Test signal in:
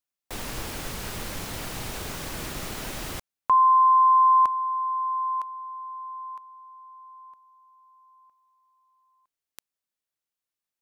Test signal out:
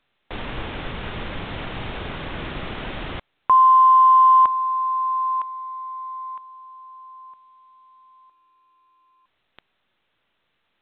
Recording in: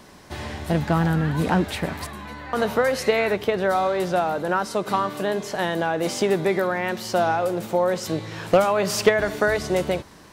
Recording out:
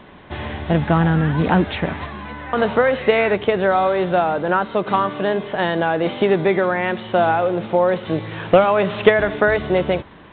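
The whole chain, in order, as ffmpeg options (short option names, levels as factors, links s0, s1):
-af "volume=1.68" -ar 8000 -c:a pcm_alaw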